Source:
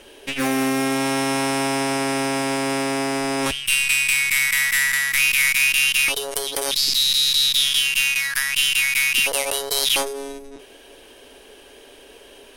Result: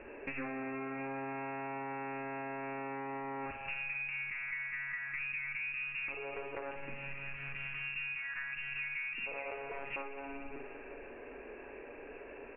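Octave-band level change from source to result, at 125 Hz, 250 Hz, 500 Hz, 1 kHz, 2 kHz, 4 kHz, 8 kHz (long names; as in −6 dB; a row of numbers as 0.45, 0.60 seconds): −16.0 dB, −19.5 dB, −16.0 dB, −15.0 dB, −18.0 dB, below −30 dB, below −40 dB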